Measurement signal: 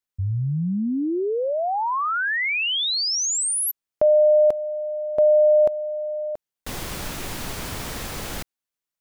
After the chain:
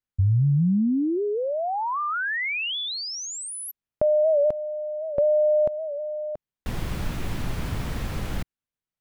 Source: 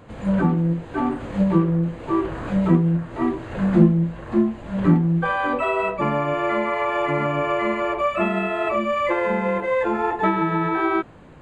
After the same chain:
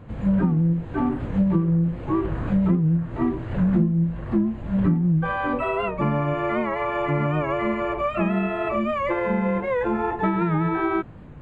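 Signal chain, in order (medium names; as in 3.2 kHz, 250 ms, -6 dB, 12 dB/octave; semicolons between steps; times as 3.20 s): tone controls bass +10 dB, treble -8 dB; compression 6:1, threshold -14 dBFS; warped record 78 rpm, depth 100 cents; trim -3 dB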